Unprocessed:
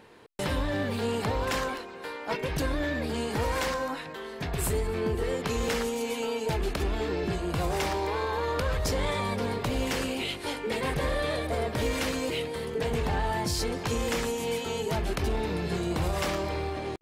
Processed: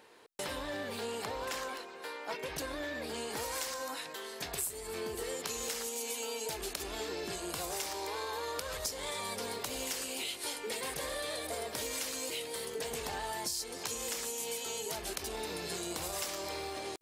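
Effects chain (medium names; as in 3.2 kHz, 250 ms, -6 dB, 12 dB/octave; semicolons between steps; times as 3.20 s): tone controls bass -13 dB, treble +6 dB, from 3.36 s treble +15 dB; compression 6:1, threshold -30 dBFS, peak gain reduction 14.5 dB; trim -4.5 dB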